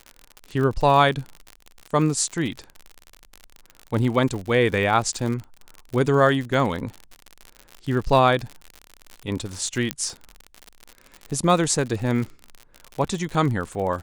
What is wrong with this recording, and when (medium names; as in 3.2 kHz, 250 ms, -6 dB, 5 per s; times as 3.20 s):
crackle 65 per s -28 dBFS
9.91 s: pop -7 dBFS